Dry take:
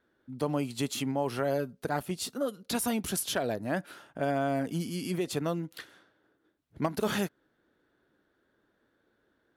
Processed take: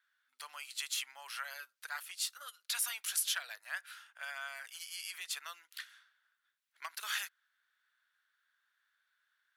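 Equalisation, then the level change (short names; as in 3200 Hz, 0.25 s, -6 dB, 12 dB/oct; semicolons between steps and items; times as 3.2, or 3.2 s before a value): HPF 1400 Hz 24 dB/oct; 0.0 dB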